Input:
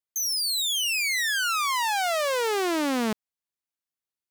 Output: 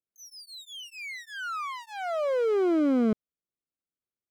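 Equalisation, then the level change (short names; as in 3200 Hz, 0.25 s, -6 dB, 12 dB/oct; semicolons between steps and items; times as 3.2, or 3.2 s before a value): running mean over 49 samples; low shelf 220 Hz -7 dB; +8.0 dB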